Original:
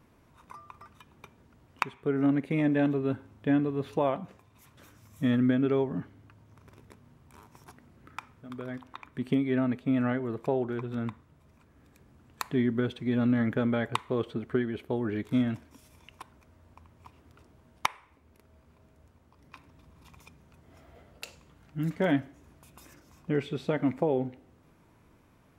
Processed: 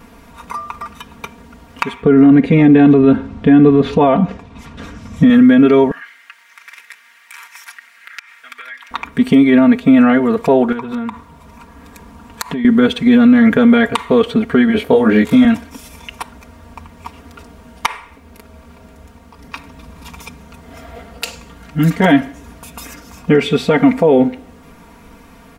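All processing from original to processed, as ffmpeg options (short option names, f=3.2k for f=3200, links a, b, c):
-filter_complex "[0:a]asettb=1/sr,asplit=3[a][b][c];[a]atrim=end=2.024[d];[b]atrim=start=2.02:end=5.3,asetpts=PTS-STARTPTS,afade=t=in:d=0.004:c=qsin,afade=t=out:st=3.276:d=0.004:c=qsin,lowpass=5.1k,lowshelf=f=400:g=9[e];[c]atrim=start=5.296[f];[d][e]acrossfade=d=0.004:c1=hsin:c2=qsin[g];[g][f]acrossfade=d=0.004:c1=qsin:c2=hsin,asettb=1/sr,asplit=3[h][i][j];[h]atrim=end=5.914[k];[i]atrim=start=5.91:end=8.91,asetpts=PTS-STARTPTS,afade=t=in:d=0.004:c=qsin,afade=t=out:st=2.996:d=0.004:c=qsin,highpass=f=1.9k:t=q:w=3,acompressor=threshold=-50dB:ratio=6:attack=3.2:release=140:knee=1:detection=peak[l];[j]atrim=start=8.906[m];[k][l]acrossfade=d=0.004:c1=hsin:c2=qsin[n];[n][m]acrossfade=d=0.004:c1=qsin:c2=hsin,asettb=1/sr,asplit=3[o][p][q];[o]atrim=end=10.724[r];[p]atrim=start=10.72:end=12.65,asetpts=PTS-STARTPTS,afade=t=in:d=0.004:c=qsin,afade=t=out:st=1.926:d=0.004:c=qsin,equalizer=f=990:t=o:w=0.37:g=9,acompressor=threshold=-37dB:ratio=12:attack=3.2:release=140:knee=1:detection=peak[s];[q]atrim=start=12.646[t];[r][s]acrossfade=d=0.004:c1=hsin:c2=qsin[u];[u][t]acrossfade=d=0.004:c1=qsin:c2=hsin,asettb=1/sr,asplit=3[v][w][x];[v]atrim=end=14.674[y];[w]atrim=start=14.67:end=15.45,asetpts=PTS-STARTPTS,afade=t=in:d=0.004:c=qsin,afade=t=out:st=0.776:d=0.004:c=qsin,highpass=54,equalizer=f=570:w=7:g=7,asplit=2[z][aa];[aa]adelay=23,volume=-2.5dB[ab];[z][ab]amix=inputs=2:normalize=0,atrim=end_sample=34398[ac];[x]atrim=start=15.446[ad];[y][ac]acrossfade=d=0.004:c1=hsin:c2=qsin[ae];[ae][ad]acrossfade=d=0.004:c1=qsin:c2=hsin,equalizer=f=290:w=0.51:g=-3,aecho=1:1:4.3:0.87,alimiter=level_in=20.5dB:limit=-1dB:release=50:level=0:latency=1,volume=-1dB"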